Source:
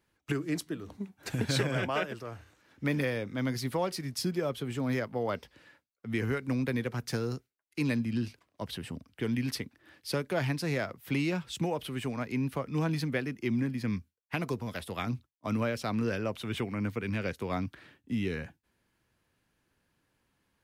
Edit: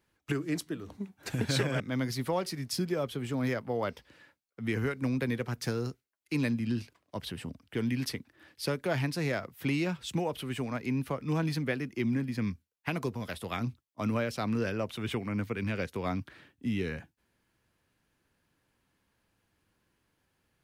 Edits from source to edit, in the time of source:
1.80–3.26 s: delete

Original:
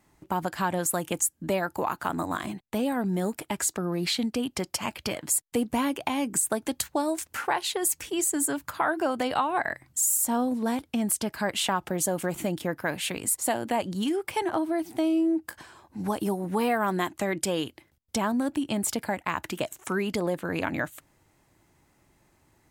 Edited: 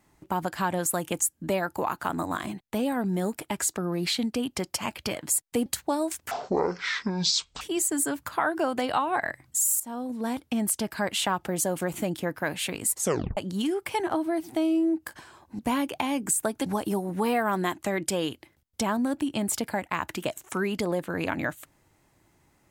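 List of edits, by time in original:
5.66–6.73 s: move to 16.01 s
7.38–8.03 s: speed 50%
10.22–10.89 s: fade in, from -15.5 dB
13.40 s: tape stop 0.39 s

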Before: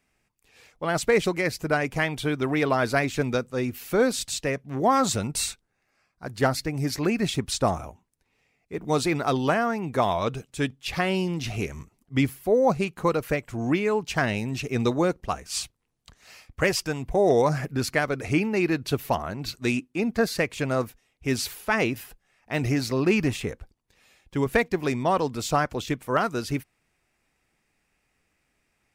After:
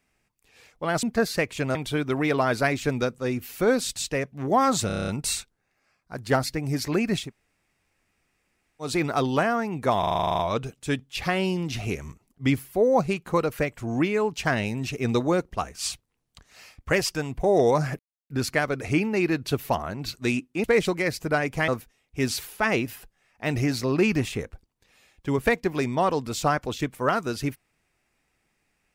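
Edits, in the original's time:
1.03–2.07 s: swap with 20.04–20.76 s
5.19 s: stutter 0.03 s, 8 plays
7.35–8.98 s: room tone, crossfade 0.16 s
10.10 s: stutter 0.04 s, 11 plays
17.70 s: insert silence 0.31 s

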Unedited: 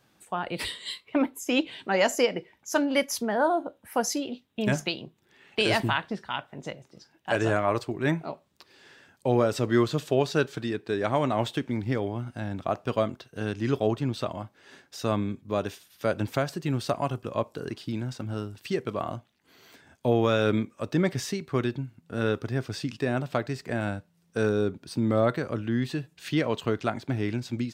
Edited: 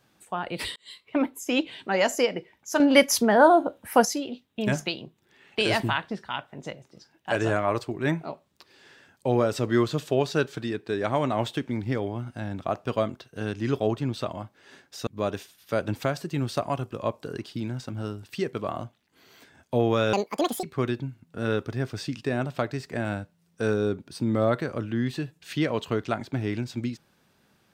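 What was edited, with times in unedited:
0.76–1.17 s: fade in
2.80–4.05 s: gain +7.5 dB
15.07–15.39 s: delete
20.45–21.39 s: speed 187%

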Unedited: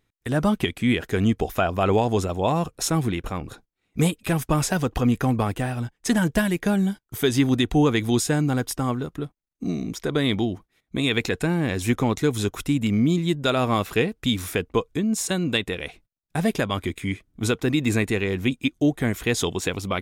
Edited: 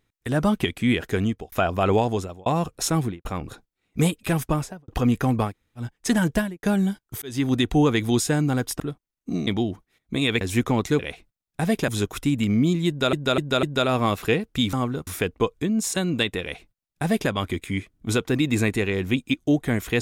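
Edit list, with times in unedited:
1.14–1.52 s: fade out
2.02–2.46 s: fade out linear
2.99–3.25 s: studio fade out
4.41–4.88 s: studio fade out
5.49–5.80 s: room tone, crossfade 0.10 s
6.32–6.63 s: studio fade out
7.22–7.67 s: fade in equal-power
8.80–9.14 s: move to 14.41 s
9.81–10.29 s: delete
11.23–11.73 s: delete
13.31–13.56 s: loop, 4 plays
15.75–16.64 s: copy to 12.31 s

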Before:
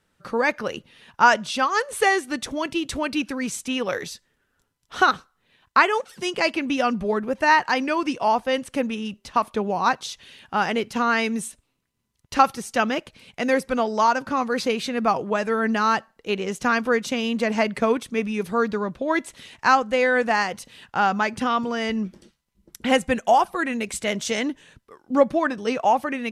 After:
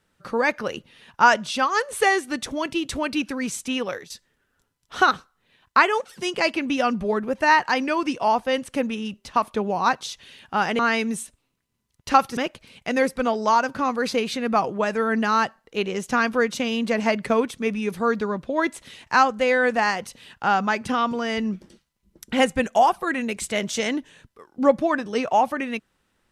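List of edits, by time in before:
3.78–4.10 s: fade out, to -16 dB
10.79–11.04 s: delete
12.62–12.89 s: delete

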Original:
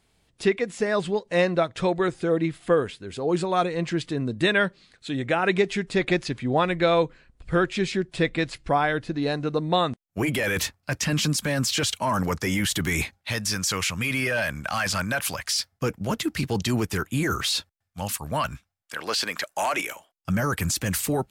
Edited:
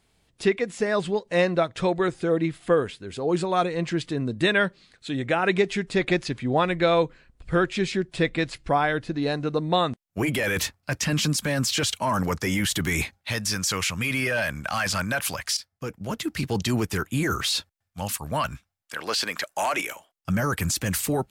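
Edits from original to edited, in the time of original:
15.57–16.56 s: fade in, from -13 dB

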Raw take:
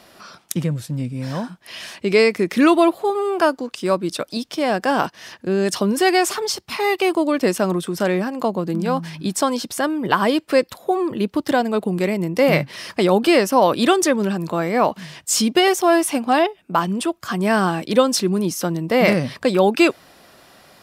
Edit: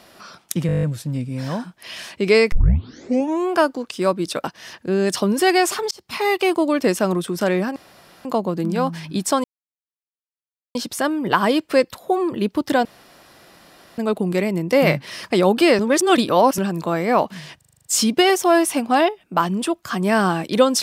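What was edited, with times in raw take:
0.67 s: stutter 0.02 s, 9 plays
2.36 s: tape start 1.02 s
4.28–5.03 s: delete
6.50–6.76 s: fade in
8.35 s: insert room tone 0.49 s
9.54 s: insert silence 1.31 s
11.64 s: insert room tone 1.13 s
13.45–14.24 s: reverse
15.23 s: stutter 0.04 s, 8 plays

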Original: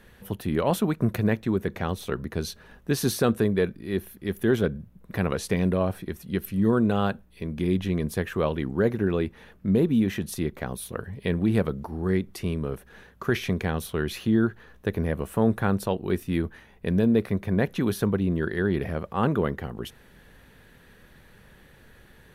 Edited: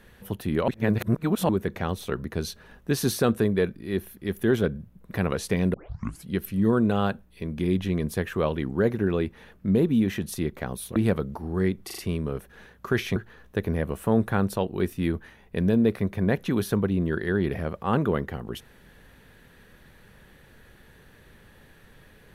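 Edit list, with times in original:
0.68–1.49 s: reverse
5.74 s: tape start 0.52 s
10.96–11.45 s: delete
12.35 s: stutter 0.04 s, 4 plays
13.53–14.46 s: delete

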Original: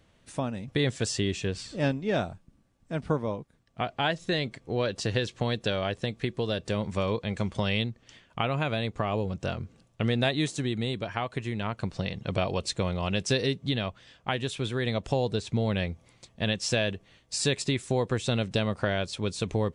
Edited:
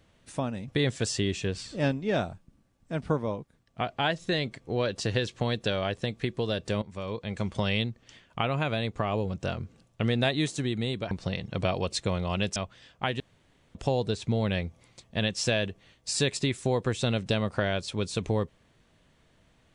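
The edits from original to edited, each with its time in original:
6.82–7.55 s: fade in linear, from -14.5 dB
11.11–11.84 s: delete
13.29–13.81 s: delete
14.45–15.00 s: room tone

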